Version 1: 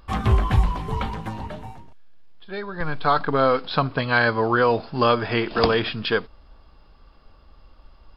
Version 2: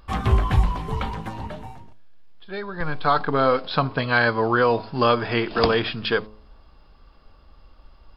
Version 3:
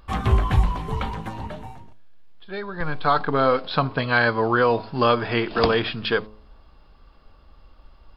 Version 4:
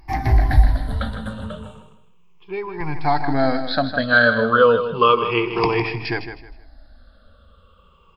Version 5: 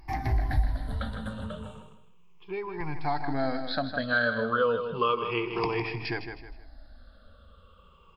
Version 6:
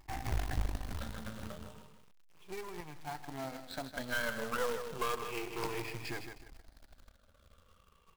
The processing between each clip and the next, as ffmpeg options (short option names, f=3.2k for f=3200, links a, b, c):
-af "bandreject=f=107:t=h:w=4,bandreject=f=214:t=h:w=4,bandreject=f=321:t=h:w=4,bandreject=f=428:t=h:w=4,bandreject=f=535:t=h:w=4,bandreject=f=642:t=h:w=4,bandreject=f=749:t=h:w=4,bandreject=f=856:t=h:w=4,bandreject=f=963:t=h:w=4,bandreject=f=1.07k:t=h:w=4"
-af "equalizer=f=5k:w=7.1:g=-3.5"
-filter_complex "[0:a]afftfilt=real='re*pow(10,20/40*sin(2*PI*(0.74*log(max(b,1)*sr/1024/100)/log(2)-(-0.33)*(pts-256)/sr)))':imag='im*pow(10,20/40*sin(2*PI*(0.74*log(max(b,1)*sr/1024/100)/log(2)-(-0.33)*(pts-256)/sr)))':win_size=1024:overlap=0.75,asplit=2[a][b];[b]aecho=0:1:157|314|471:0.316|0.0822|0.0214[c];[a][c]amix=inputs=2:normalize=0,volume=-2.5dB"
-af "acompressor=threshold=-34dB:ratio=1.5,volume=-3dB"
-af "aeval=exprs='if(lt(val(0),0),0.251*val(0),val(0))':c=same,acrusher=bits=2:mode=log:mix=0:aa=0.000001,volume=-6.5dB"